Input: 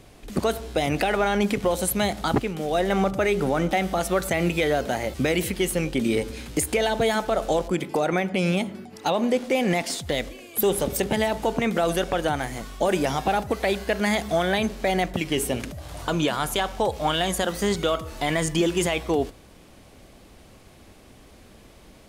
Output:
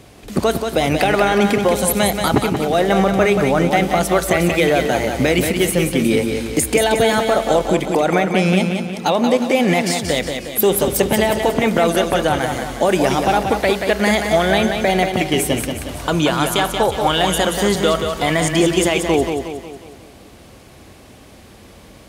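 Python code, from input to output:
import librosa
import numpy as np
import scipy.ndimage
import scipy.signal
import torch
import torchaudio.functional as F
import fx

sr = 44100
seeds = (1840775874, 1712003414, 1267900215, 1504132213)

y = scipy.signal.sosfilt(scipy.signal.butter(2, 54.0, 'highpass', fs=sr, output='sos'), x)
y = fx.echo_feedback(y, sr, ms=181, feedback_pct=49, wet_db=-6)
y = y * librosa.db_to_amplitude(6.5)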